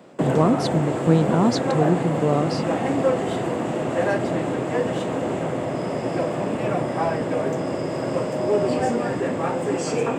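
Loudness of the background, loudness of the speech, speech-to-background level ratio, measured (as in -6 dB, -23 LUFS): -24.0 LUFS, -22.5 LUFS, 1.5 dB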